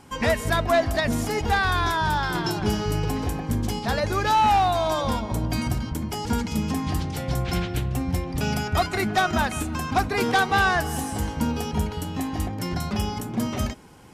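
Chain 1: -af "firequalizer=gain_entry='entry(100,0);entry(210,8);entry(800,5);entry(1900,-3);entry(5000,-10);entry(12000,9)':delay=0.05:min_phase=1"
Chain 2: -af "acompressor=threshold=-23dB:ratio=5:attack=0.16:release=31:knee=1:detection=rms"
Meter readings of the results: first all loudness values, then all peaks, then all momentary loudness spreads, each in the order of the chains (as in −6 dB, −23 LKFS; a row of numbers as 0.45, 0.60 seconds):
−20.5, −29.0 LKFS; −6.0, −20.5 dBFS; 7, 4 LU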